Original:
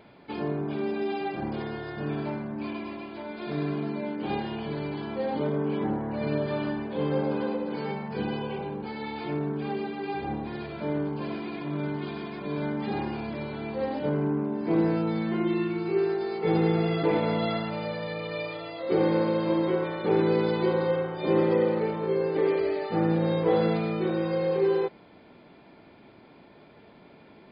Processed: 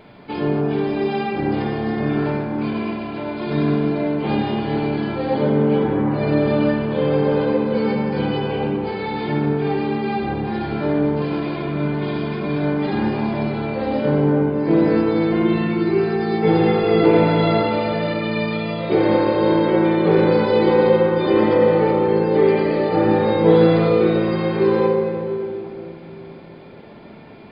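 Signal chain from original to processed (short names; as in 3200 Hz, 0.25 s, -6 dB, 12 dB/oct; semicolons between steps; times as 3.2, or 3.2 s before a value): low shelf 130 Hz +3.5 dB; shoebox room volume 140 m³, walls hard, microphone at 0.42 m; gain +6.5 dB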